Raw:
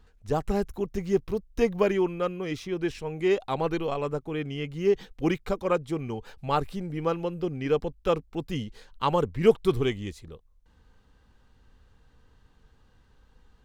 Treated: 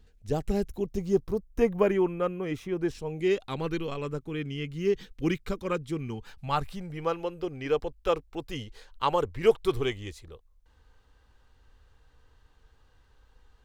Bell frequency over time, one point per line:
bell -11 dB 1.1 oct
0.69 s 1100 Hz
1.67 s 4600 Hz
2.7 s 4600 Hz
3.38 s 730 Hz
5.98 s 730 Hz
7.22 s 190 Hz

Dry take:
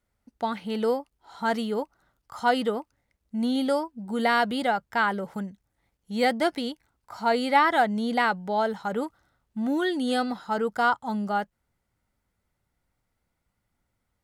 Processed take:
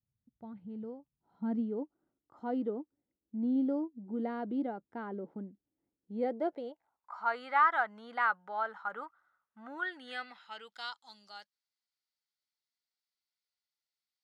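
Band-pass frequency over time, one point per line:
band-pass, Q 3.3
0.97 s 130 Hz
1.77 s 310 Hz
6.12 s 310 Hz
7.27 s 1300 Hz
9.75 s 1300 Hz
10.98 s 4500 Hz

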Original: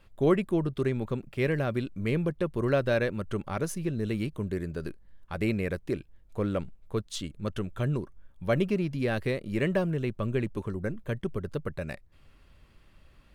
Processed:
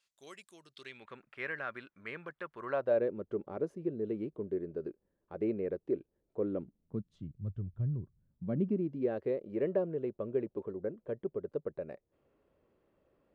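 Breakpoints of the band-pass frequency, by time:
band-pass, Q 2
0.63 s 6400 Hz
1.2 s 1500 Hz
2.6 s 1500 Hz
3.02 s 410 Hz
6.42 s 410 Hz
7.44 s 100 Hz
7.94 s 100 Hz
9.16 s 460 Hz

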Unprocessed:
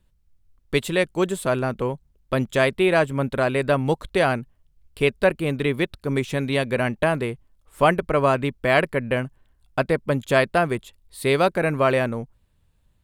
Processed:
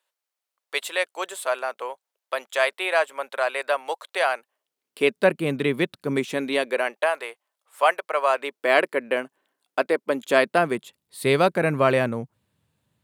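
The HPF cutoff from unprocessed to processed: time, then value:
HPF 24 dB/oct
4.39 s 590 Hz
5.32 s 150 Hz
6.09 s 150 Hz
7.13 s 590 Hz
8.25 s 590 Hz
8.71 s 300 Hz
10.03 s 300 Hz
11.28 s 110 Hz

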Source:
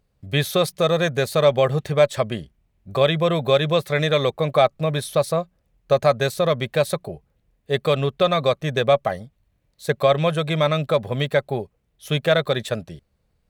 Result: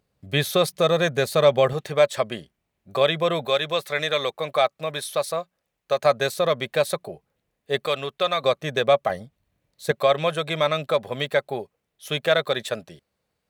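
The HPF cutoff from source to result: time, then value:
HPF 6 dB/oct
160 Hz
from 1.73 s 390 Hz
from 3.45 s 840 Hz
from 6.05 s 360 Hz
from 7.86 s 890 Hz
from 8.44 s 310 Hz
from 9.1 s 140 Hz
from 9.91 s 440 Hz

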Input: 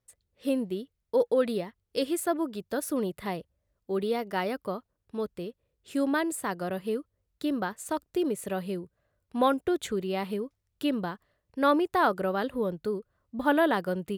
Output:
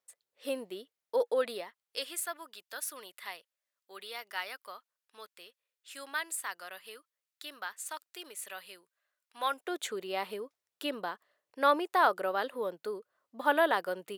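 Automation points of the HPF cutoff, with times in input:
1.39 s 590 Hz
2.33 s 1500 Hz
9.38 s 1500 Hz
9.78 s 550 Hz

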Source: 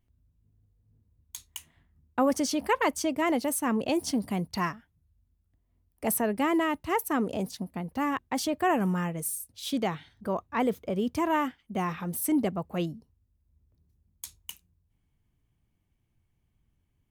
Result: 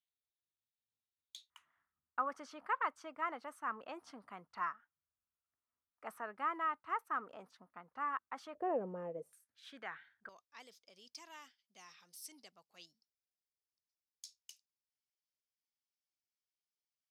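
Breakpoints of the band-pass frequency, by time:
band-pass, Q 4.8
3700 Hz
from 1.5 s 1300 Hz
from 8.55 s 510 Hz
from 9.33 s 1600 Hz
from 10.29 s 5100 Hz

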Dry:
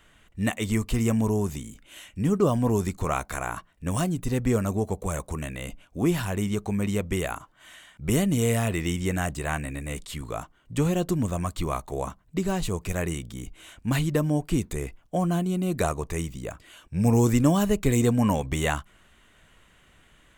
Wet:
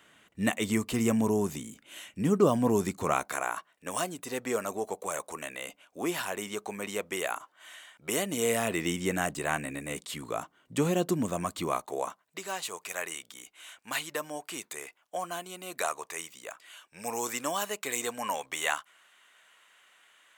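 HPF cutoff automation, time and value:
3.12 s 190 Hz
3.53 s 490 Hz
8.16 s 490 Hz
8.87 s 220 Hz
11.62 s 220 Hz
12.39 s 830 Hz

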